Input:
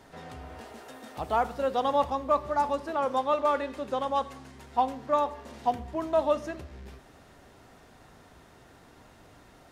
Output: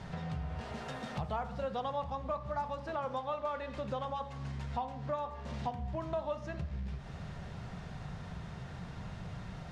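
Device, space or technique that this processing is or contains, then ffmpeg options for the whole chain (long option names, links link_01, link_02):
jukebox: -af "lowpass=5400,lowshelf=frequency=220:width_type=q:width=3:gain=8,acompressor=threshold=-42dB:ratio=4,bandreject=frequency=55.88:width_type=h:width=4,bandreject=frequency=111.76:width_type=h:width=4,bandreject=frequency=167.64:width_type=h:width=4,bandreject=frequency=223.52:width_type=h:width=4,bandreject=frequency=279.4:width_type=h:width=4,bandreject=frequency=335.28:width_type=h:width=4,bandreject=frequency=391.16:width_type=h:width=4,bandreject=frequency=447.04:width_type=h:width=4,bandreject=frequency=502.92:width_type=h:width=4,bandreject=frequency=558.8:width_type=h:width=4,bandreject=frequency=614.68:width_type=h:width=4,bandreject=frequency=670.56:width_type=h:width=4,bandreject=frequency=726.44:width_type=h:width=4,bandreject=frequency=782.32:width_type=h:width=4,bandreject=frequency=838.2:width_type=h:width=4,bandreject=frequency=894.08:width_type=h:width=4,bandreject=frequency=949.96:width_type=h:width=4,bandreject=frequency=1005.84:width_type=h:width=4,bandreject=frequency=1061.72:width_type=h:width=4,bandreject=frequency=1117.6:width_type=h:width=4,bandreject=frequency=1173.48:width_type=h:width=4,bandreject=frequency=1229.36:width_type=h:width=4,bandreject=frequency=1285.24:width_type=h:width=4,bandreject=frequency=1341.12:width_type=h:width=4,bandreject=frequency=1397:width_type=h:width=4,bandreject=frequency=1452.88:width_type=h:width=4,bandreject=frequency=1508.76:width_type=h:width=4,bandreject=frequency=1564.64:width_type=h:width=4,bandreject=frequency=1620.52:width_type=h:width=4,bandreject=frequency=1676.4:width_type=h:width=4,bandreject=frequency=1732.28:width_type=h:width=4,bandreject=frequency=1788.16:width_type=h:width=4,bandreject=frequency=1844.04:width_type=h:width=4,bandreject=frequency=1899.92:width_type=h:width=4,bandreject=frequency=1955.8:width_type=h:width=4,bandreject=frequency=2011.68:width_type=h:width=4,bandreject=frequency=2067.56:width_type=h:width=4,volume=6dB"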